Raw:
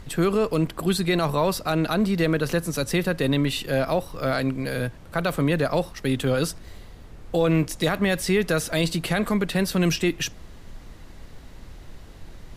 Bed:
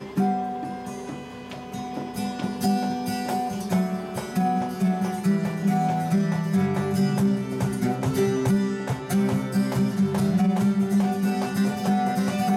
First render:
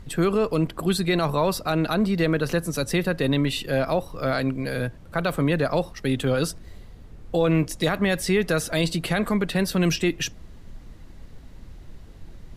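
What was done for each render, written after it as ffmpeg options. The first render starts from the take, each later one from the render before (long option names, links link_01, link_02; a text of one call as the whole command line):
ffmpeg -i in.wav -af "afftdn=noise_reduction=6:noise_floor=-44" out.wav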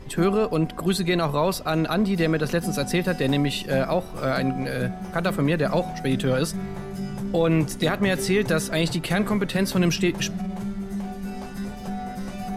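ffmpeg -i in.wav -i bed.wav -filter_complex "[1:a]volume=-9dB[link_01];[0:a][link_01]amix=inputs=2:normalize=0" out.wav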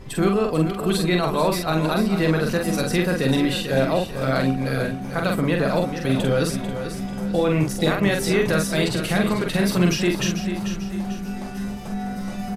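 ffmpeg -i in.wav -filter_complex "[0:a]asplit=2[link_01][link_02];[link_02]adelay=45,volume=-3.5dB[link_03];[link_01][link_03]amix=inputs=2:normalize=0,aecho=1:1:443|886|1329|1772|2215:0.335|0.141|0.0591|0.0248|0.0104" out.wav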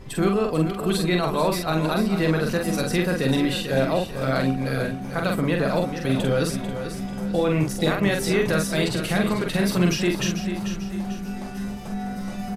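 ffmpeg -i in.wav -af "volume=-1.5dB" out.wav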